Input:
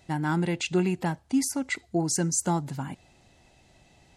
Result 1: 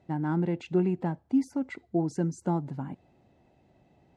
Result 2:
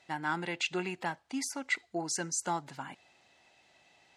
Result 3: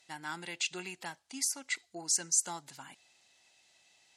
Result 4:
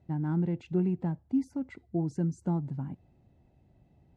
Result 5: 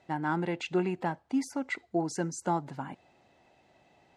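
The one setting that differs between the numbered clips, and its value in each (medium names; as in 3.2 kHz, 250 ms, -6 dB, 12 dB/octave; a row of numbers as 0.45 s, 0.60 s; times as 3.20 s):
band-pass filter, frequency: 290 Hz, 2 kHz, 5.8 kHz, 110 Hz, 780 Hz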